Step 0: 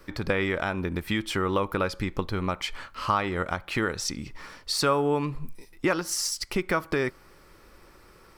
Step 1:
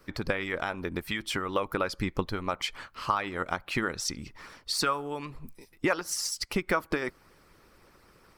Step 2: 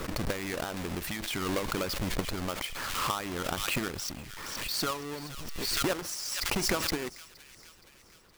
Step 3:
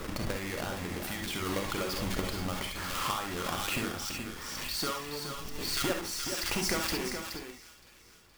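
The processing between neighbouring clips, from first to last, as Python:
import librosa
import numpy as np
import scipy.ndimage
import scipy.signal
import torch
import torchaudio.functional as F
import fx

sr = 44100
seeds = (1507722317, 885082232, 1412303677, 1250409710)

y1 = fx.hpss(x, sr, part='harmonic', gain_db=-13)
y2 = fx.halfwave_hold(y1, sr)
y2 = fx.echo_wet_highpass(y2, sr, ms=469, feedback_pct=56, hz=2100.0, wet_db=-12.5)
y2 = fx.pre_swell(y2, sr, db_per_s=27.0)
y2 = F.gain(torch.from_numpy(y2), -8.5).numpy()
y3 = y2 + 10.0 ** (-7.5 / 20.0) * np.pad(y2, (int(423 * sr / 1000.0), 0))[:len(y2)]
y3 = fx.rev_gated(y3, sr, seeds[0], gate_ms=90, shape='rising', drr_db=2.5)
y3 = F.gain(torch.from_numpy(y3), -3.5).numpy()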